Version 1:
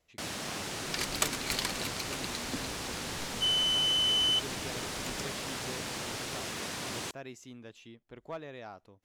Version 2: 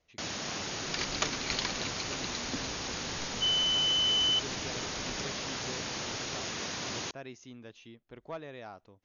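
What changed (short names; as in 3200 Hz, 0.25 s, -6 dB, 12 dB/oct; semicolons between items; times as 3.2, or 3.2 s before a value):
first sound: remove air absorption 67 m; master: add brick-wall FIR low-pass 6900 Hz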